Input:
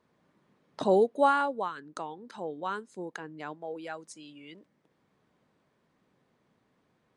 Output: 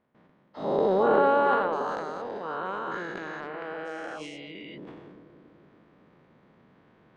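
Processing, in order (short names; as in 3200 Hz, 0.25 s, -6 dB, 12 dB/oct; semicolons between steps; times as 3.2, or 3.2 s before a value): spectral dilation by 0.48 s; LPF 2900 Hz 12 dB/oct; gate with hold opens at -53 dBFS; reverse; upward compressor, threshold -29 dBFS; reverse; transient shaper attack -3 dB, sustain +10 dB; on a send: analogue delay 0.282 s, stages 1024, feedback 58%, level -8 dB; on the sum: gain -6 dB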